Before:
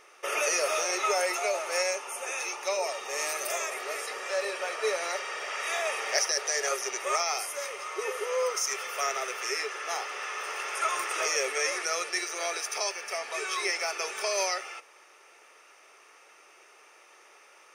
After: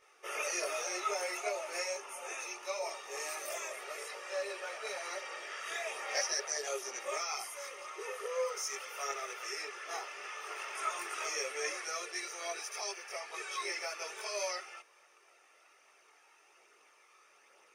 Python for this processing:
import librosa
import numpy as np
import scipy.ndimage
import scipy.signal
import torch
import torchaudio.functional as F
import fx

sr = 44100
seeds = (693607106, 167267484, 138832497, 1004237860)

y = fx.chorus_voices(x, sr, voices=4, hz=0.59, base_ms=21, depth_ms=1.9, mix_pct=60)
y = y * librosa.db_to_amplitude(-5.5)